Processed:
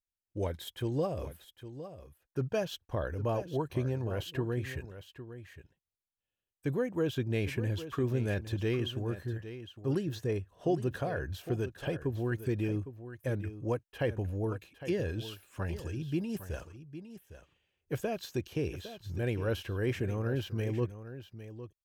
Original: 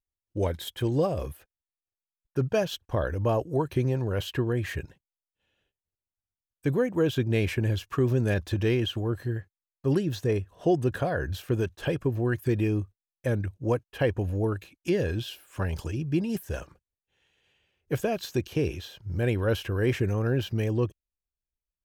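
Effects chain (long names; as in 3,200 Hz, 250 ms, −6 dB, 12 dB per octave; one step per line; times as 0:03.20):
single-tap delay 808 ms −12.5 dB
level −6.5 dB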